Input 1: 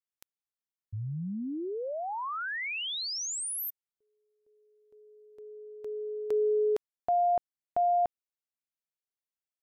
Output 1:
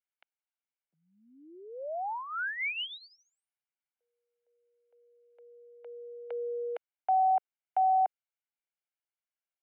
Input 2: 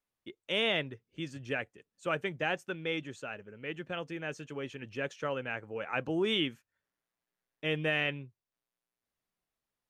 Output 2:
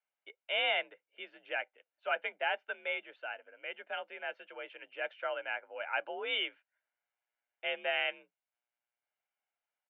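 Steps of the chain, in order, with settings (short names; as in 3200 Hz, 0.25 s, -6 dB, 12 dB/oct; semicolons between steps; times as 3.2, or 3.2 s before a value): high shelf 2200 Hz +8 dB; comb 1.4 ms, depth 51%; mistuned SSB +53 Hz 370–2800 Hz; gain -3.5 dB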